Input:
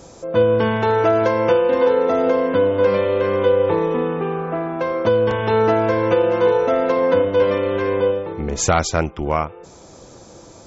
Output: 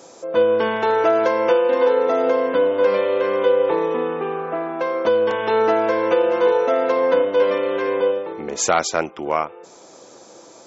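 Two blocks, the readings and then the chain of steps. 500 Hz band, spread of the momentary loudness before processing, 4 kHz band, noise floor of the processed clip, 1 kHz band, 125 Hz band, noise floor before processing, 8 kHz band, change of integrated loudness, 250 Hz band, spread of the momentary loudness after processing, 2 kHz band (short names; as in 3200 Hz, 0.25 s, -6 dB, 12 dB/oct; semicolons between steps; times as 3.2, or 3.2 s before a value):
-0.5 dB, 7 LU, 0.0 dB, -45 dBFS, 0.0 dB, -16.0 dB, -43 dBFS, n/a, -1.0 dB, -4.5 dB, 7 LU, 0.0 dB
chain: HPF 320 Hz 12 dB/oct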